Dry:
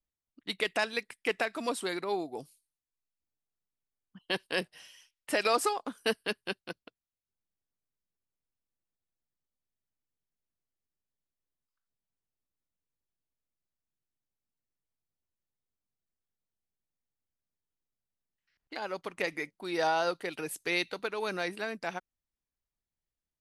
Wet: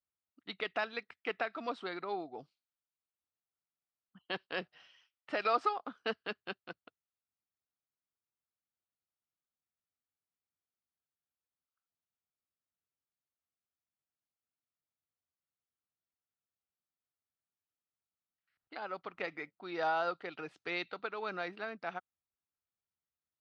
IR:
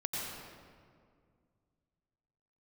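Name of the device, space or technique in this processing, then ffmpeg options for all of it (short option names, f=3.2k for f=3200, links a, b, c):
guitar cabinet: -af "highpass=79,equalizer=f=86:t=q:w=4:g=5,equalizer=f=730:t=q:w=4:g=5,equalizer=f=1.3k:t=q:w=4:g=9,lowpass=f=4.3k:w=0.5412,lowpass=f=4.3k:w=1.3066,volume=-7.5dB"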